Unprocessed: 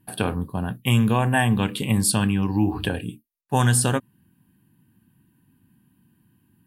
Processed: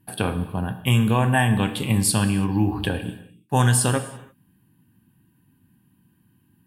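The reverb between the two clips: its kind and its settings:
reverb whose tail is shaped and stops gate 360 ms falling, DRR 9 dB

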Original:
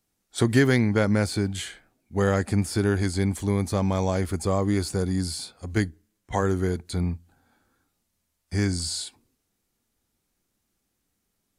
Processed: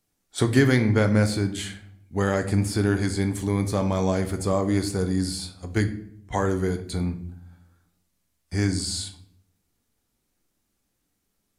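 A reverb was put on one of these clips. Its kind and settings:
rectangular room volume 120 cubic metres, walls mixed, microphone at 0.35 metres

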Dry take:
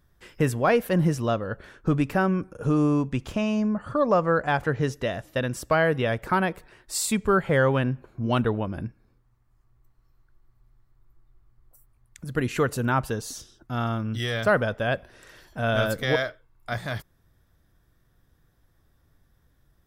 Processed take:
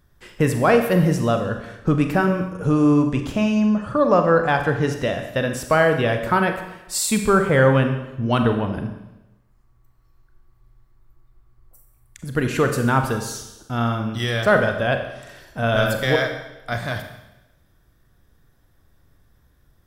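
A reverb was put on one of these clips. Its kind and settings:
four-comb reverb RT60 0.96 s, combs from 30 ms, DRR 5.5 dB
level +4 dB

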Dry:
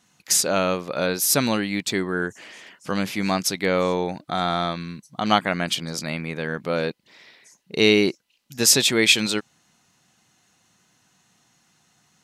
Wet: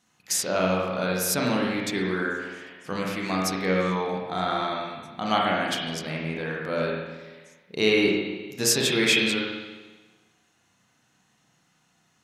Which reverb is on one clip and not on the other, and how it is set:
spring reverb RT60 1.3 s, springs 32/49 ms, chirp 75 ms, DRR −3 dB
level −6.5 dB

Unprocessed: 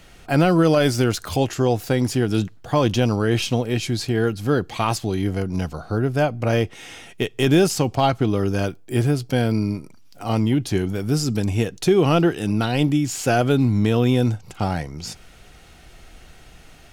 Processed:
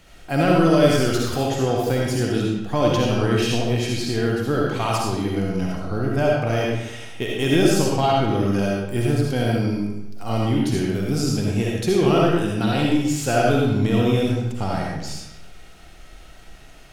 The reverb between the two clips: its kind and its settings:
comb and all-pass reverb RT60 0.9 s, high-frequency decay 0.85×, pre-delay 25 ms, DRR −3 dB
level −4 dB

